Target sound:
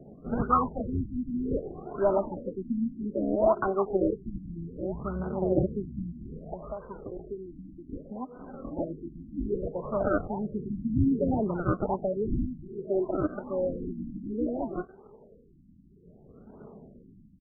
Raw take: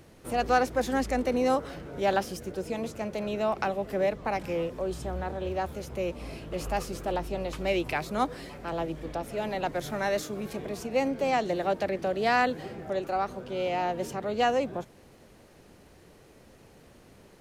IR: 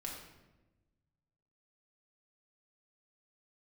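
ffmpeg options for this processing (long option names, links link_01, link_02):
-filter_complex "[0:a]highpass=110,equalizer=frequency=860:width_type=o:width=0.4:gain=-5,aecho=1:1:4.8:0.76,asettb=1/sr,asplit=3[link_01][link_02][link_03];[link_01]atrim=end=6.534[link_04];[link_02]atrim=start=6.53:end=8.77,asetpts=PTS-STARTPTS,afade=type=in:duration=0.004:curve=qsin,afade=type=out:start_time=2.236:duration=0.004:curve=qsin,acompressor=threshold=-36dB:ratio=6[link_05];[link_03]atrim=start=8.766[link_06];[link_04][link_05]acrossfade=duration=0.004:curve1=hsin:curve2=qsin[link_07];[link_07][link_06]acrossfade=duration=0.004:curve1=qsin:curve2=hsin,acrusher=samples=33:mix=1:aa=0.000001:lfo=1:lforange=33:lforate=1.3,asoftclip=type=hard:threshold=-17.5dB,aphaser=in_gain=1:out_gain=1:delay=4.1:decay=0.56:speed=0.18:type=triangular,afftfilt=real='re*lt(b*sr/1024,310*pow(1600/310,0.5+0.5*sin(2*PI*0.62*pts/sr)))':imag='im*lt(b*sr/1024,310*pow(1600/310,0.5+0.5*sin(2*PI*0.62*pts/sr)))':win_size=1024:overlap=0.75"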